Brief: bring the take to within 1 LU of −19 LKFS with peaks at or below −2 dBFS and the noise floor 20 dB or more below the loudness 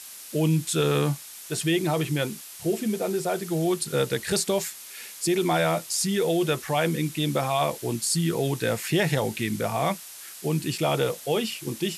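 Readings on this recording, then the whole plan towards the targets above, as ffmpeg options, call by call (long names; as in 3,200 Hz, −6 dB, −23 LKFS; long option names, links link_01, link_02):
background noise floor −43 dBFS; target noise floor −46 dBFS; integrated loudness −26.0 LKFS; sample peak −10.0 dBFS; target loudness −19.0 LKFS
→ -af "afftdn=noise_reduction=6:noise_floor=-43"
-af "volume=7dB"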